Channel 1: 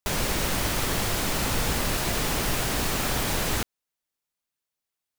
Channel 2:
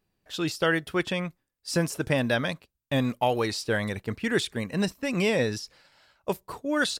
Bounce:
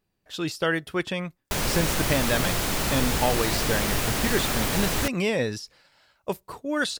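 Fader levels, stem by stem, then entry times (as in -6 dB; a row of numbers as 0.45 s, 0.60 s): +0.5 dB, -0.5 dB; 1.45 s, 0.00 s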